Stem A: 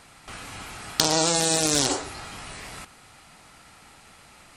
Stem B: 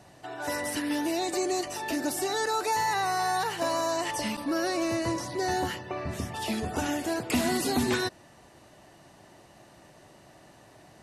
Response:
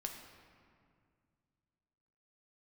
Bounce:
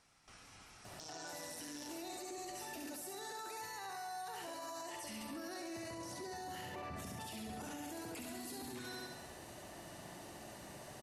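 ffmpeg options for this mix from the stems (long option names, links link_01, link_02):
-filter_complex "[0:a]equalizer=frequency=5600:width_type=o:width=0.28:gain=10,volume=-20dB[link_01];[1:a]highshelf=frequency=9000:gain=10,acompressor=threshold=-36dB:ratio=6,adelay=850,volume=0dB,asplit=2[link_02][link_03];[link_03]volume=-4dB,aecho=0:1:69|138|207|276|345|414|483|552|621:1|0.57|0.325|0.185|0.106|0.0602|0.0343|0.0195|0.0111[link_04];[link_01][link_02][link_04]amix=inputs=3:normalize=0,alimiter=level_in=14dB:limit=-24dB:level=0:latency=1:release=39,volume=-14dB"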